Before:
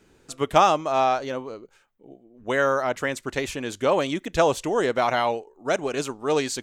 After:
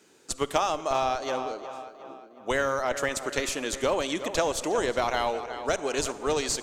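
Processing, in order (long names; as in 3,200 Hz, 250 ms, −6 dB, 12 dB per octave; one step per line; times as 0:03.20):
high-pass filter 150 Hz 12 dB per octave
bass and treble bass −7 dB, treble +11 dB
in parallel at −10 dB: comparator with hysteresis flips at −16 dBFS
on the sum: tape delay 362 ms, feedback 51%, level −14.5 dB, low-pass 4,400 Hz
downward compressor 5 to 1, threshold −22 dBFS, peak gain reduction 10.5 dB
high-shelf EQ 8,500 Hz −9 dB
on a send at −16 dB: convolution reverb RT60 1.8 s, pre-delay 38 ms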